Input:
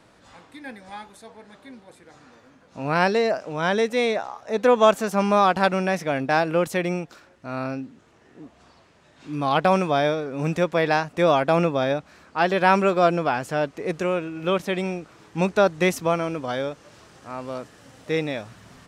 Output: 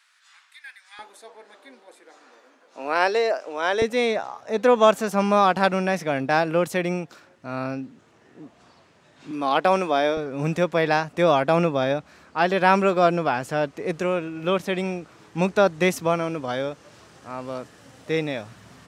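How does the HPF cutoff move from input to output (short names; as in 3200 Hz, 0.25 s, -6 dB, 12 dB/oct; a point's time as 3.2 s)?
HPF 24 dB/oct
1400 Hz
from 0.99 s 330 Hz
from 3.82 s 86 Hz
from 9.31 s 220 Hz
from 10.17 s 62 Hz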